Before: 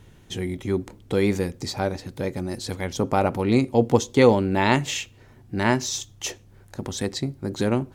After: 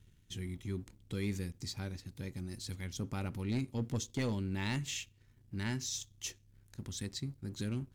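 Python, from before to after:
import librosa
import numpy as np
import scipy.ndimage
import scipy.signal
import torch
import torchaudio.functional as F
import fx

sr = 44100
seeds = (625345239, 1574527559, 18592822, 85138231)

y = fx.tone_stack(x, sr, knobs='6-0-2')
y = fx.leveller(y, sr, passes=1)
y = np.clip(10.0 ** (29.0 / 20.0) * y, -1.0, 1.0) / 10.0 ** (29.0 / 20.0)
y = F.gain(torch.from_numpy(y), 1.0).numpy()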